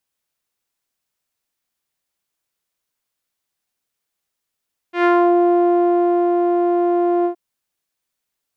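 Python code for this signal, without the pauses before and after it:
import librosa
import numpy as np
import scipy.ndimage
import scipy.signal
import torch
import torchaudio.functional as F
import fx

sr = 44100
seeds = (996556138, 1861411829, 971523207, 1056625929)

y = fx.sub_voice(sr, note=65, wave='saw', cutoff_hz=640.0, q=1.5, env_oct=2.0, env_s=0.4, attack_ms=113.0, decay_s=1.28, sustain_db=-3.5, release_s=0.1, note_s=2.32, slope=12)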